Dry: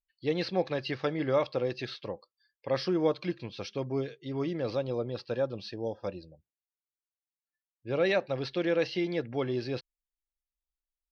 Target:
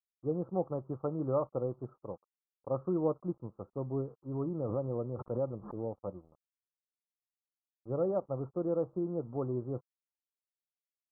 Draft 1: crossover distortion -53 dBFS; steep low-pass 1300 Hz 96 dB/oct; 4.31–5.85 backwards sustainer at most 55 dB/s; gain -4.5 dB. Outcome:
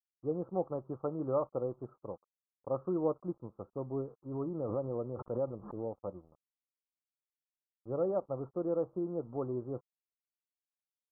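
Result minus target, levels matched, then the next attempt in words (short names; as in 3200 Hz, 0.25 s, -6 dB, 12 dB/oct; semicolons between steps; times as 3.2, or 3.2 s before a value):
125 Hz band -3.5 dB
crossover distortion -53 dBFS; steep low-pass 1300 Hz 96 dB/oct; dynamic EQ 130 Hz, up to +5 dB, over -44 dBFS, Q 0.86; 4.31–5.85 backwards sustainer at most 55 dB/s; gain -4.5 dB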